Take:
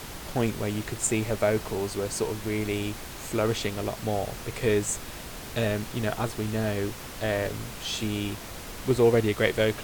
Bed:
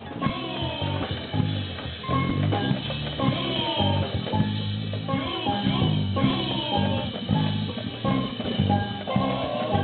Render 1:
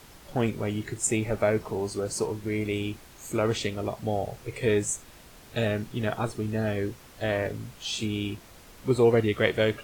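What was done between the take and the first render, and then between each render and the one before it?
noise print and reduce 11 dB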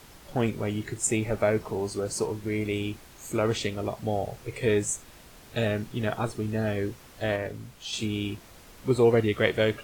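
7.36–7.93 gain -3.5 dB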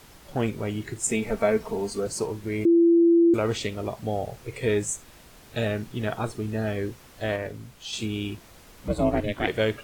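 1.09–2.07 comb 4.4 ms; 2.65–3.34 bleep 338 Hz -14 dBFS; 8.88–9.48 ring modulator 200 Hz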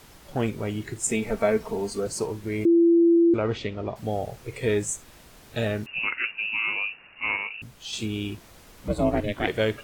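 3.16–3.96 air absorption 190 m; 5.86–7.62 inverted band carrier 2800 Hz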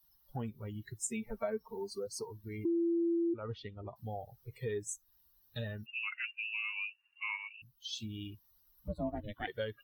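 per-bin expansion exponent 2; compressor 2:1, threshold -42 dBFS, peak gain reduction 13.5 dB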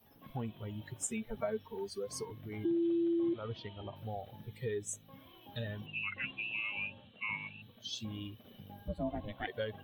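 add bed -29.5 dB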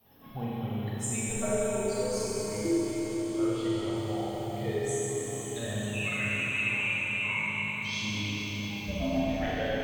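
diffused feedback echo 0.452 s, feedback 70%, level -10 dB; Schroeder reverb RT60 3.8 s, combs from 30 ms, DRR -8 dB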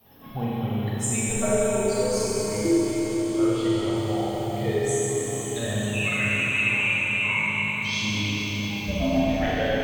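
gain +6.5 dB

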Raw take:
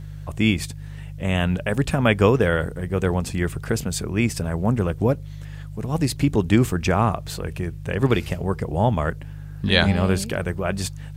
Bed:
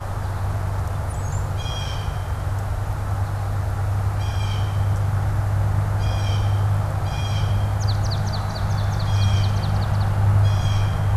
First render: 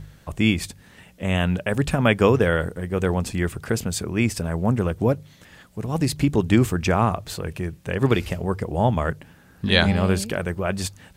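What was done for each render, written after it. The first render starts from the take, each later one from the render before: de-hum 50 Hz, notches 3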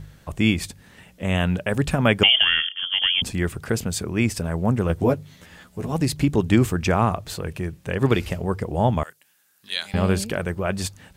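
2.23–3.22 inverted band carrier 3300 Hz; 4.88–5.93 doubler 12 ms -3 dB; 9.03–9.94 differentiator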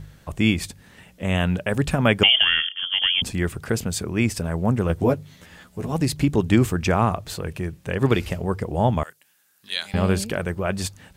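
nothing audible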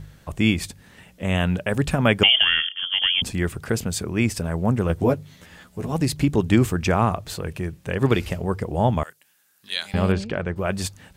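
10.12–10.56 air absorption 150 m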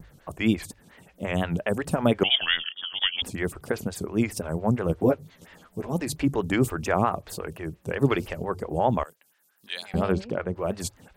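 vibrato 4.4 Hz 89 cents; photocell phaser 5.7 Hz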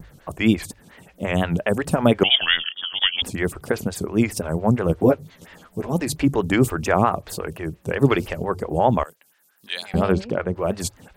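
gain +5 dB

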